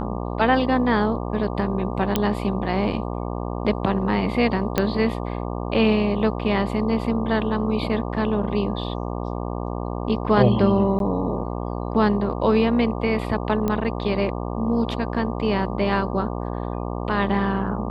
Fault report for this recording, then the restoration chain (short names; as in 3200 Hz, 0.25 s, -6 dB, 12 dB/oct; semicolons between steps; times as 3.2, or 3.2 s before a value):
buzz 60 Hz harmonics 20 -28 dBFS
2.16 pop -6 dBFS
4.78 pop -6 dBFS
10.99–11 gap 12 ms
13.68 pop -12 dBFS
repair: de-click; de-hum 60 Hz, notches 20; interpolate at 10.99, 12 ms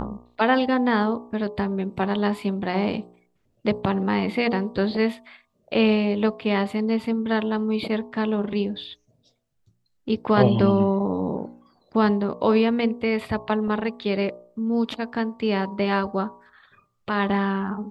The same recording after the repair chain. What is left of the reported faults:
none